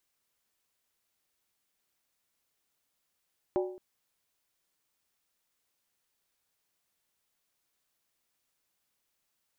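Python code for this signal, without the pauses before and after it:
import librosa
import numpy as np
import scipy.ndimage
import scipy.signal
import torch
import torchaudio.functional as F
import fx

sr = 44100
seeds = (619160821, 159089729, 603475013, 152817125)

y = fx.strike_skin(sr, length_s=0.22, level_db=-24.0, hz=368.0, decay_s=0.57, tilt_db=5.5, modes=5)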